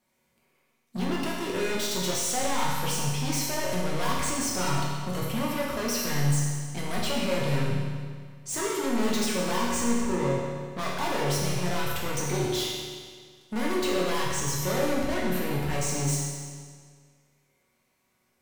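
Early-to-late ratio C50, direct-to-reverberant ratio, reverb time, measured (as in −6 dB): −0.5 dB, −5.5 dB, 1.8 s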